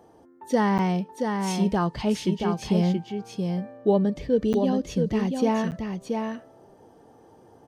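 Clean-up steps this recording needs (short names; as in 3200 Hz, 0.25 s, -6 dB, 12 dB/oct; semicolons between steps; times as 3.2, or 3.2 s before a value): interpolate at 0.78/4.53/5.71, 9 ms; inverse comb 0.677 s -5 dB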